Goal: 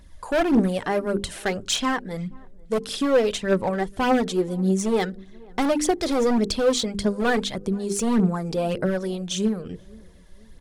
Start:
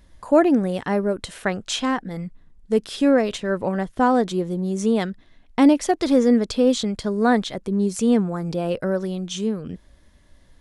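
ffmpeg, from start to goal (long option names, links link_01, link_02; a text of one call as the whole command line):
ffmpeg -i in.wav -filter_complex "[0:a]highshelf=frequency=6000:gain=4,bandreject=frequency=50:width_type=h:width=6,bandreject=frequency=100:width_type=h:width=6,bandreject=frequency=150:width_type=h:width=6,bandreject=frequency=200:width_type=h:width=6,bandreject=frequency=250:width_type=h:width=6,bandreject=frequency=300:width_type=h:width=6,bandreject=frequency=350:width_type=h:width=6,bandreject=frequency=400:width_type=h:width=6,bandreject=frequency=450:width_type=h:width=6,volume=17.5dB,asoftclip=hard,volume=-17.5dB,aphaser=in_gain=1:out_gain=1:delay=2.6:decay=0.48:speed=1.7:type=triangular,asplit=2[link_01][link_02];[link_02]adelay=483,lowpass=frequency=880:poles=1,volume=-24dB,asplit=2[link_03][link_04];[link_04]adelay=483,lowpass=frequency=880:poles=1,volume=0.44,asplit=2[link_05][link_06];[link_06]adelay=483,lowpass=frequency=880:poles=1,volume=0.44[link_07];[link_01][link_03][link_05][link_07]amix=inputs=4:normalize=0" out.wav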